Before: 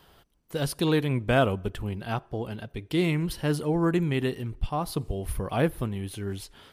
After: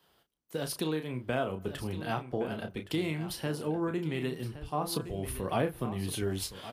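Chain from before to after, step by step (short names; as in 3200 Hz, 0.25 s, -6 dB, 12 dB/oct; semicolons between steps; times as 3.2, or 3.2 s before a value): doubler 32 ms -7.5 dB; compressor 6:1, threshold -30 dBFS, peak gain reduction 13.5 dB; HPF 300 Hz 6 dB/oct; low shelf 440 Hz +5 dB; on a send: echo 1.118 s -12 dB; on the sum: vocal rider within 4 dB 2 s; three-band expander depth 40%; gain +1.5 dB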